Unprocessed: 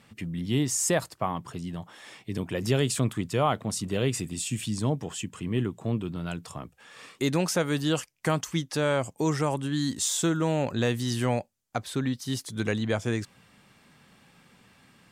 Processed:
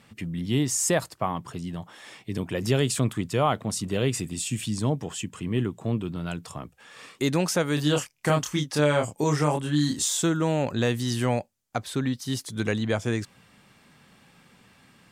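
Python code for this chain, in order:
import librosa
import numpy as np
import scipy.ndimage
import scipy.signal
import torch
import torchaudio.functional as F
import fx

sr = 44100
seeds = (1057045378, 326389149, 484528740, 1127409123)

y = fx.doubler(x, sr, ms=27.0, db=-3.5, at=(7.76, 10.03), fade=0.02)
y = F.gain(torch.from_numpy(y), 1.5).numpy()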